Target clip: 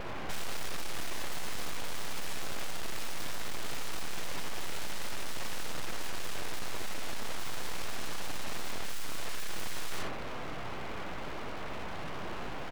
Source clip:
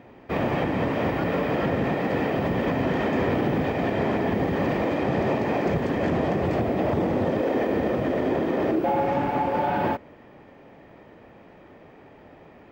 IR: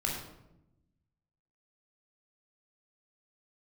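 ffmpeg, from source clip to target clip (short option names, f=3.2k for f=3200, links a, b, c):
-filter_complex "[0:a]asplit=2[a][b];[b]adelay=62,lowpass=f=4.1k:p=1,volume=-3.5dB,asplit=2[c][d];[d]adelay=62,lowpass=f=4.1k:p=1,volume=0.26,asplit=2[e][f];[f]adelay=62,lowpass=f=4.1k:p=1,volume=0.26,asplit=2[g][h];[h]adelay=62,lowpass=f=4.1k:p=1,volume=0.26[i];[a][c][e][g][i]amix=inputs=5:normalize=0,aeval=exprs='abs(val(0))':c=same,aeval=exprs='(tanh(70.8*val(0)+0.65)-tanh(0.65))/70.8':c=same,volume=17.5dB"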